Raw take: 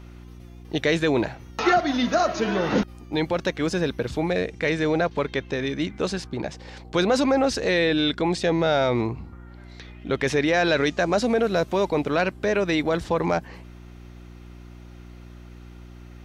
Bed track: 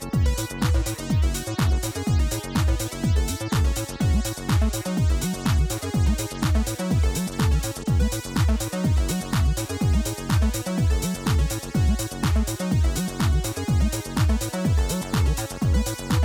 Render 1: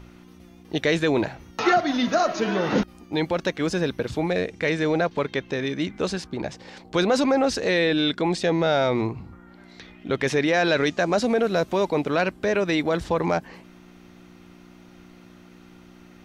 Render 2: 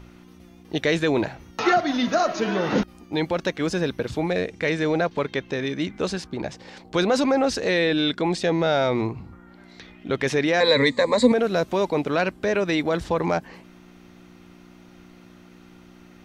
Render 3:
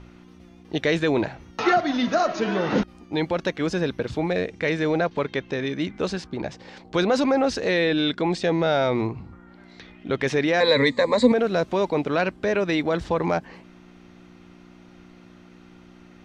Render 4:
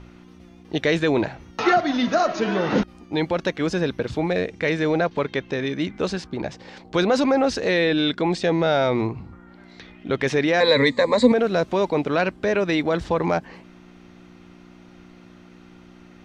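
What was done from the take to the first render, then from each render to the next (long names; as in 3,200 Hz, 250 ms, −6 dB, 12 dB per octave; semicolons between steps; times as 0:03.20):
hum removal 60 Hz, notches 2
0:10.60–0:11.32: EQ curve with evenly spaced ripples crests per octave 1, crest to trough 18 dB
high-frequency loss of the air 54 metres
level +1.5 dB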